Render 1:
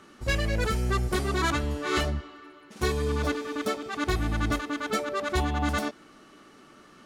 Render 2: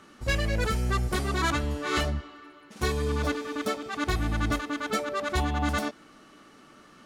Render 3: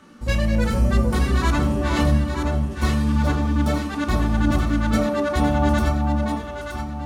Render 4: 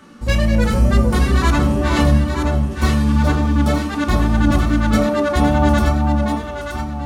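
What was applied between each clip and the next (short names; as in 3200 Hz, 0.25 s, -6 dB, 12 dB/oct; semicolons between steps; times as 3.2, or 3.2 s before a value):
bell 380 Hz -4.5 dB 0.23 oct
echo with dull and thin repeats by turns 0.462 s, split 1000 Hz, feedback 63%, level -2 dB; on a send at -2.5 dB: reverb RT60 0.45 s, pre-delay 3 ms
wow and flutter 21 cents; gain +4.5 dB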